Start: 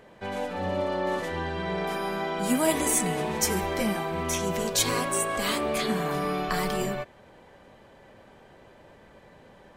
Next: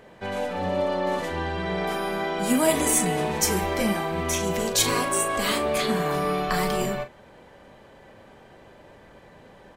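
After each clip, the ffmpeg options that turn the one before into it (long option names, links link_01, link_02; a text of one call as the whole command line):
ffmpeg -i in.wav -filter_complex "[0:a]asplit=2[link_01][link_02];[link_02]adelay=39,volume=-10dB[link_03];[link_01][link_03]amix=inputs=2:normalize=0,volume=2.5dB" out.wav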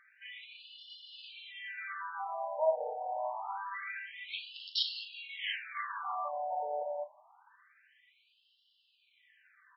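ffmpeg -i in.wav -af "afftfilt=real='re*between(b*sr/1024,660*pow(3900/660,0.5+0.5*sin(2*PI*0.26*pts/sr))/1.41,660*pow(3900/660,0.5+0.5*sin(2*PI*0.26*pts/sr))*1.41)':imag='im*between(b*sr/1024,660*pow(3900/660,0.5+0.5*sin(2*PI*0.26*pts/sr))/1.41,660*pow(3900/660,0.5+0.5*sin(2*PI*0.26*pts/sr))*1.41)':win_size=1024:overlap=0.75,volume=-5.5dB" out.wav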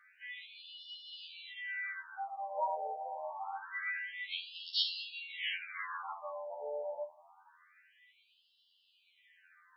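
ffmpeg -i in.wav -af "afftfilt=real='re*2*eq(mod(b,4),0)':imag='im*2*eq(mod(b,4),0)':win_size=2048:overlap=0.75,volume=3dB" out.wav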